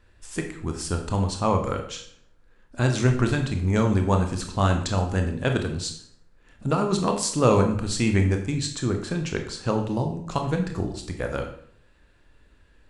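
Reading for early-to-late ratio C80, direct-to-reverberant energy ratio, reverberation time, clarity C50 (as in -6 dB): 11.5 dB, 4.0 dB, 0.60 s, 8.0 dB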